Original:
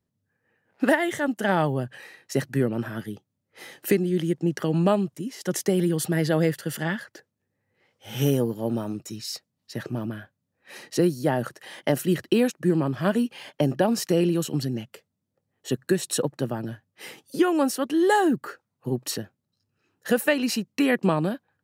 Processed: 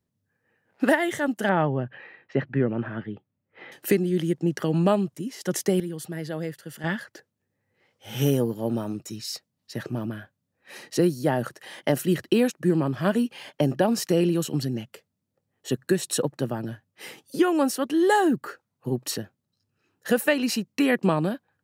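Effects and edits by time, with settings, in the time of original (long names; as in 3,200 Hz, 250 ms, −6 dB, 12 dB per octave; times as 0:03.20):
0:01.49–0:03.72: low-pass filter 2,800 Hz 24 dB per octave
0:05.80–0:06.84: clip gain −9.5 dB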